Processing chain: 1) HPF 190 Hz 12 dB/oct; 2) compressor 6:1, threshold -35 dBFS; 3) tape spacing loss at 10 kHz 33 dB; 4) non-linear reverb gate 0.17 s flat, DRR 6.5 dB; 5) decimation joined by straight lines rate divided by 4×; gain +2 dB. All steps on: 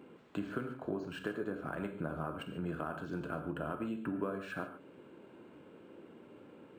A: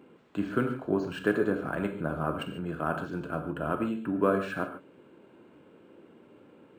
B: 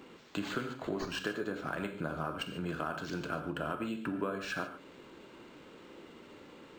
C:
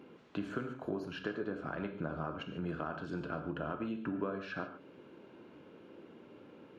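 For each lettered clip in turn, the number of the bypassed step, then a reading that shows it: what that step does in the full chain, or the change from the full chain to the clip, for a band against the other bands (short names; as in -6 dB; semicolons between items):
2, mean gain reduction 5.0 dB; 3, 4 kHz band +9.5 dB; 5, 4 kHz band +2.0 dB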